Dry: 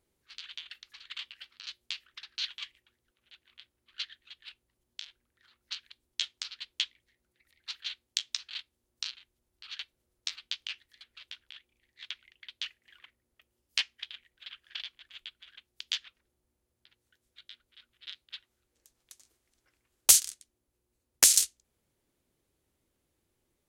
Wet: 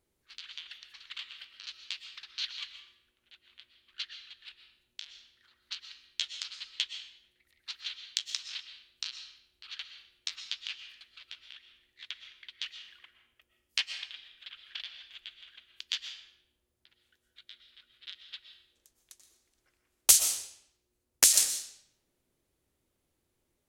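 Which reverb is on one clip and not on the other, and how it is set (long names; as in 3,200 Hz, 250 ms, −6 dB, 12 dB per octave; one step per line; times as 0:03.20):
comb and all-pass reverb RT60 0.72 s, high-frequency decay 0.9×, pre-delay 85 ms, DRR 7.5 dB
level −1 dB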